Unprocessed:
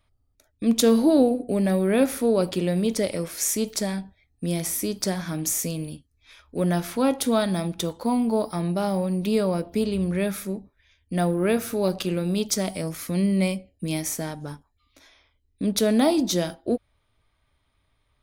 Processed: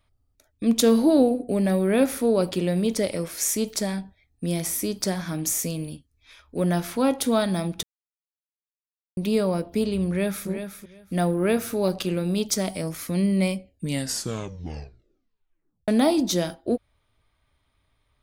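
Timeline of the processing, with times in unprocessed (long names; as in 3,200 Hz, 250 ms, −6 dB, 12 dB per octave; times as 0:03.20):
0:07.83–0:09.17: silence
0:10.08–0:10.48: delay throw 370 ms, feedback 15%, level −8.5 dB
0:13.71: tape stop 2.17 s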